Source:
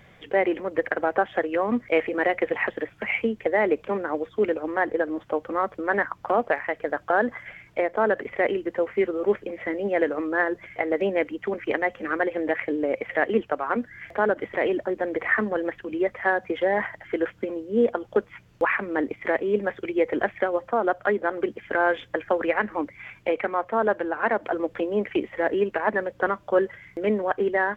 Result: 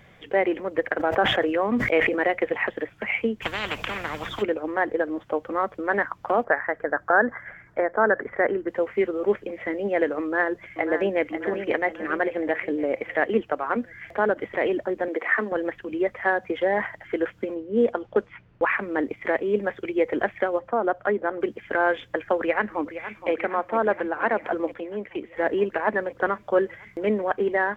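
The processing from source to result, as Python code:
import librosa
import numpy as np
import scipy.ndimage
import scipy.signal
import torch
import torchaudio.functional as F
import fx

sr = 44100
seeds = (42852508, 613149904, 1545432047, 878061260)

y = fx.sustainer(x, sr, db_per_s=44.0, at=(0.98, 2.17), fade=0.02)
y = fx.spectral_comp(y, sr, ratio=10.0, at=(3.41, 4.41), fade=0.02)
y = fx.high_shelf_res(y, sr, hz=2100.0, db=-8.0, q=3.0, at=(6.44, 8.68))
y = fx.echo_throw(y, sr, start_s=10.22, length_s=1.03, ms=540, feedback_pct=50, wet_db=-8.5)
y = fx.highpass(y, sr, hz=240.0, slope=24, at=(15.08, 15.52))
y = fx.env_lowpass(y, sr, base_hz=1600.0, full_db=-16.0, at=(17.54, 18.66), fade=0.02)
y = fx.high_shelf(y, sr, hz=3100.0, db=-10.5, at=(20.59, 21.41))
y = fx.echo_throw(y, sr, start_s=22.38, length_s=0.92, ms=470, feedback_pct=80, wet_db=-12.0)
y = fx.edit(y, sr, fx.clip_gain(start_s=24.74, length_s=0.62, db=-7.0), tone=tone)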